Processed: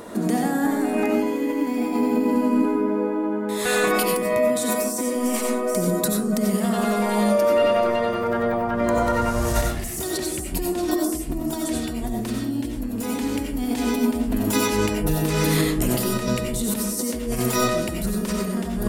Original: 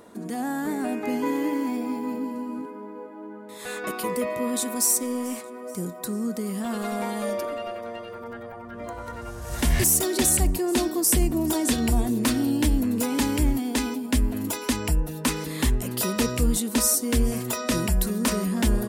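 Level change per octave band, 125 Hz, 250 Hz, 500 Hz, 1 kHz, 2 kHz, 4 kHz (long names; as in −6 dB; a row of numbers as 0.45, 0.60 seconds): +1.0, +3.5, +8.0, +6.5, +4.5, +1.0 decibels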